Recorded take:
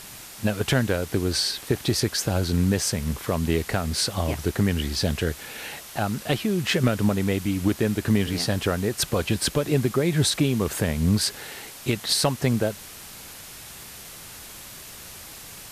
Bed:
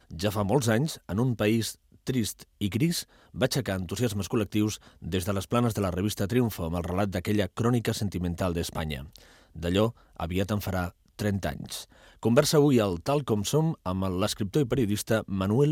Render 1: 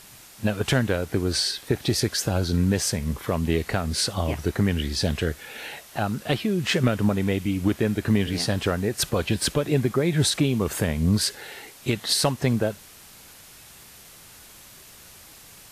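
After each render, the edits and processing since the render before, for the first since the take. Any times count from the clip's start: noise print and reduce 6 dB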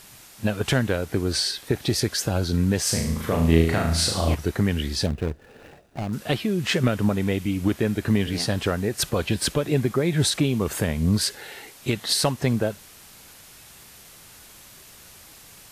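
2.82–4.35 flutter echo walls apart 6.3 m, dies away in 0.65 s; 5.06–6.13 median filter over 41 samples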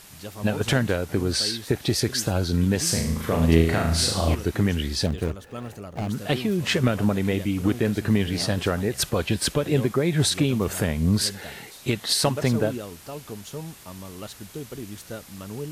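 add bed -11 dB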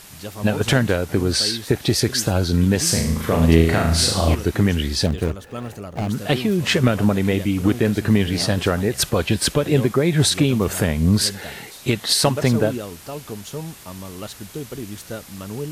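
gain +4.5 dB; limiter -1 dBFS, peak gain reduction 1.5 dB

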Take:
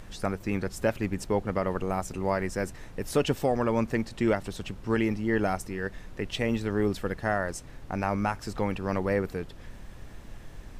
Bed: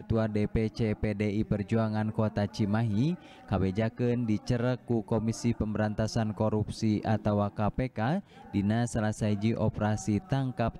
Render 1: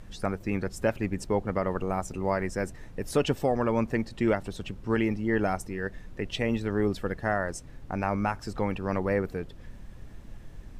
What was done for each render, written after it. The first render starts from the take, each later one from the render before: denoiser 6 dB, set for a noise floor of -46 dBFS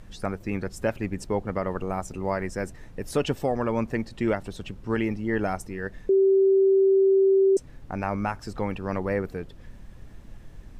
6.09–7.57 bleep 387 Hz -15.5 dBFS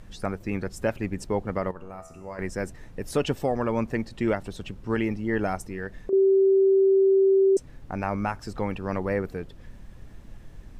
1.71–2.39 resonator 82 Hz, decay 0.98 s, mix 80%; 5.68–6.13 compressor, threshold -27 dBFS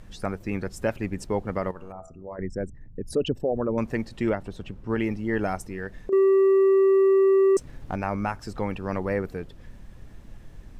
1.92–3.78 formant sharpening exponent 2; 4.29–5 high shelf 2900 Hz -9.5 dB; 6.12–7.96 sample leveller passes 1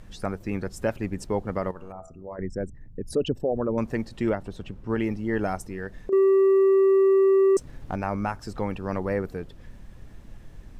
dynamic EQ 2300 Hz, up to -3 dB, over -47 dBFS, Q 1.6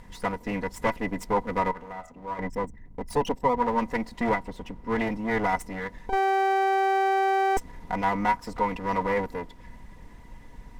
minimum comb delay 4.1 ms; small resonant body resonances 960/2000 Hz, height 16 dB, ringing for 45 ms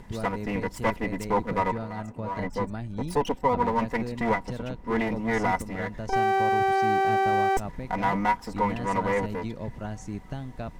add bed -7 dB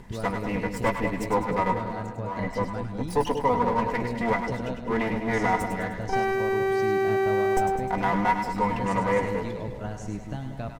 doubler 16 ms -11 dB; split-band echo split 750 Hz, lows 0.186 s, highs 0.102 s, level -7 dB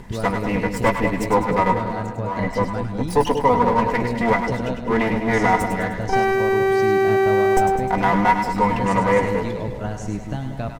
gain +6.5 dB

